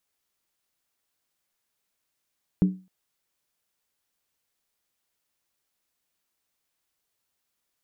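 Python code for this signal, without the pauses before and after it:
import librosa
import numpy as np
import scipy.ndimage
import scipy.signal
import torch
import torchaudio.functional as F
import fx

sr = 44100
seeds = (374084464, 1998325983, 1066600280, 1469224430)

y = fx.strike_skin(sr, length_s=0.26, level_db=-13.0, hz=186.0, decay_s=0.32, tilt_db=9.5, modes=5)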